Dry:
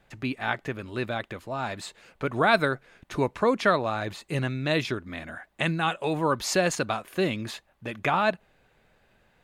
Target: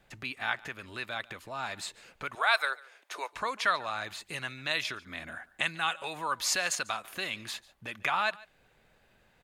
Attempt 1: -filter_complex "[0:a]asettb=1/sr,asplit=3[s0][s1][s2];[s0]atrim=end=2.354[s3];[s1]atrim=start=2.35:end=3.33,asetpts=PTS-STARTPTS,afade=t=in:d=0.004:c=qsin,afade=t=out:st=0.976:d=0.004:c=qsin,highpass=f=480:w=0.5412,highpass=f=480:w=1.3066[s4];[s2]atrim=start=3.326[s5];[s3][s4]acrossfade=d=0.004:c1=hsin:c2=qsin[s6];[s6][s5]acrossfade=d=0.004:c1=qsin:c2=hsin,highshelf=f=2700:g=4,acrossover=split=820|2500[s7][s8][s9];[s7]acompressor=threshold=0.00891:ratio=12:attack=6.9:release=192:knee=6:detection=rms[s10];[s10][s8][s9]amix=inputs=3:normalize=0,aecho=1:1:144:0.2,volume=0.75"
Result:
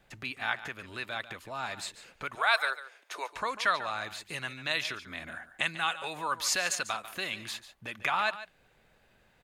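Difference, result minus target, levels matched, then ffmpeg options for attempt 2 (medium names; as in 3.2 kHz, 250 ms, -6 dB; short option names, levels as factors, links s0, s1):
echo-to-direct +8 dB
-filter_complex "[0:a]asettb=1/sr,asplit=3[s0][s1][s2];[s0]atrim=end=2.354[s3];[s1]atrim=start=2.35:end=3.33,asetpts=PTS-STARTPTS,afade=t=in:d=0.004:c=qsin,afade=t=out:st=0.976:d=0.004:c=qsin,highpass=f=480:w=0.5412,highpass=f=480:w=1.3066[s4];[s2]atrim=start=3.326[s5];[s3][s4]acrossfade=d=0.004:c1=hsin:c2=qsin[s6];[s6][s5]acrossfade=d=0.004:c1=qsin:c2=hsin,highshelf=f=2700:g=4,acrossover=split=820|2500[s7][s8][s9];[s7]acompressor=threshold=0.00891:ratio=12:attack=6.9:release=192:knee=6:detection=rms[s10];[s10][s8][s9]amix=inputs=3:normalize=0,aecho=1:1:144:0.0794,volume=0.75"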